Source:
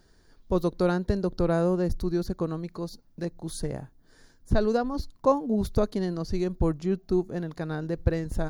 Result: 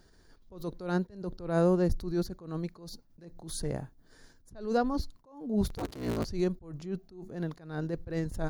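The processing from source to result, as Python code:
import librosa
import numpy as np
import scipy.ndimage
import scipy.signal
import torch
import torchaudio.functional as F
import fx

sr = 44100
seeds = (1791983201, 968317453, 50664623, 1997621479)

y = fx.cycle_switch(x, sr, every=3, mode='inverted', at=(5.67, 6.24), fade=0.02)
y = fx.attack_slew(y, sr, db_per_s=110.0)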